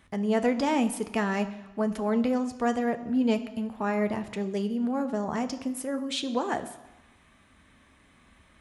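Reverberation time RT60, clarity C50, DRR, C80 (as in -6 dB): 1.1 s, 13.5 dB, 8.0 dB, 15.0 dB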